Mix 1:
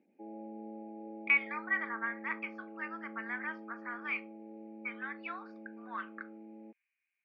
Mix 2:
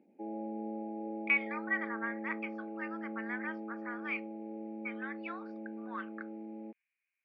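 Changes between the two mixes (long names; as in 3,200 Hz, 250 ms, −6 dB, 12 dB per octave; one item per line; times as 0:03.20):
speech: send −6.0 dB
background +6.0 dB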